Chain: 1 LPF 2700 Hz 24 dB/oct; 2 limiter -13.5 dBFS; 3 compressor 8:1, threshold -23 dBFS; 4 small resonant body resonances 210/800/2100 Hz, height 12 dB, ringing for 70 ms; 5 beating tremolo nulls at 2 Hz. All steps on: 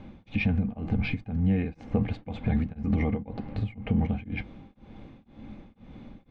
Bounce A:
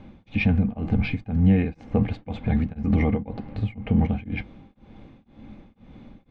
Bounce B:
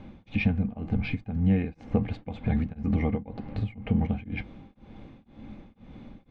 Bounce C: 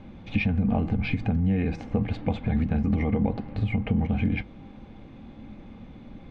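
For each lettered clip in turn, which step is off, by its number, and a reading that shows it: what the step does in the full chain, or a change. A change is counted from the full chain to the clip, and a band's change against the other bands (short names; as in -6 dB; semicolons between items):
3, mean gain reduction 2.5 dB; 2, crest factor change +2.5 dB; 5, loudness change +3.0 LU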